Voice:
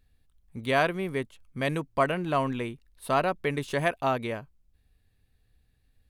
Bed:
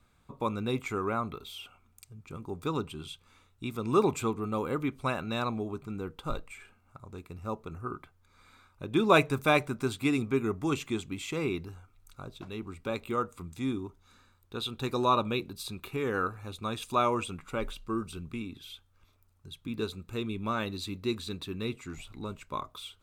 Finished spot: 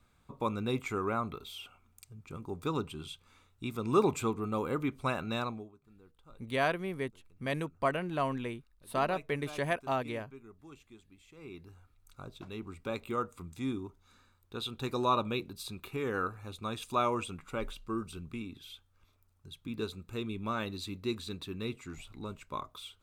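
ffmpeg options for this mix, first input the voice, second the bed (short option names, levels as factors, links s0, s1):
-filter_complex "[0:a]adelay=5850,volume=0.531[s0];[1:a]volume=8.41,afade=t=out:st=5.35:d=0.37:silence=0.0841395,afade=t=in:st=11.36:d=0.86:silence=0.1[s1];[s0][s1]amix=inputs=2:normalize=0"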